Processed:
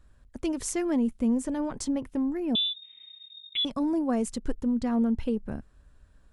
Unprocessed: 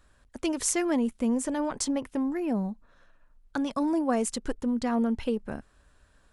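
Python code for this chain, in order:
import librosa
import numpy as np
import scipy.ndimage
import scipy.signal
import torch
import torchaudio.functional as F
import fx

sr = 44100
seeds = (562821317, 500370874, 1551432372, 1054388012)

y = fx.low_shelf(x, sr, hz=310.0, db=12.0)
y = fx.freq_invert(y, sr, carrier_hz=3700, at=(2.55, 3.65))
y = F.gain(torch.from_numpy(y), -6.0).numpy()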